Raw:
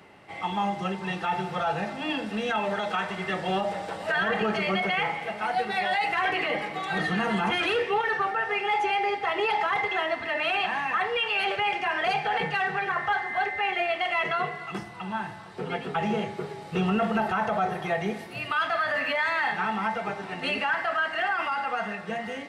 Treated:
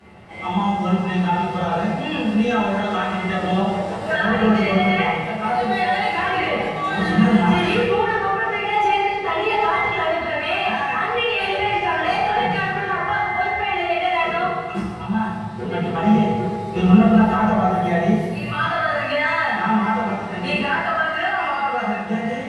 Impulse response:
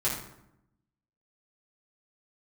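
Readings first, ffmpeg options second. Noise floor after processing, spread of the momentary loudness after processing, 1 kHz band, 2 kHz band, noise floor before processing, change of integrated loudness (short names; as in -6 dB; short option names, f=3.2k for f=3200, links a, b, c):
-28 dBFS, 7 LU, +7.0 dB, +4.5 dB, -40 dBFS, +7.5 dB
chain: -filter_complex "[0:a]lowshelf=f=200:g=9[a];[1:a]atrim=start_sample=2205,asetrate=24696,aresample=44100[b];[a][b]afir=irnorm=-1:irlink=0,volume=-7dB"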